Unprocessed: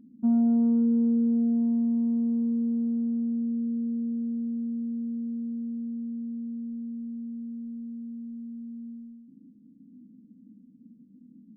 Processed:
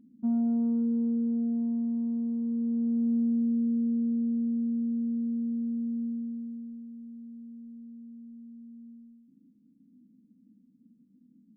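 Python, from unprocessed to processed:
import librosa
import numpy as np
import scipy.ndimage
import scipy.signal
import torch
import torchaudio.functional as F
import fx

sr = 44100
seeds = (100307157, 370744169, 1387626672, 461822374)

y = fx.gain(x, sr, db=fx.line((2.4, -4.5), (3.14, 2.0), (6.05, 2.0), (6.87, -8.0)))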